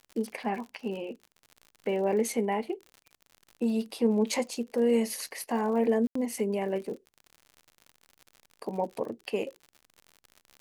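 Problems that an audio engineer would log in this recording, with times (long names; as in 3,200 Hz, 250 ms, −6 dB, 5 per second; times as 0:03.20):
surface crackle 71 per second −39 dBFS
0:06.07–0:06.15: drop-out 84 ms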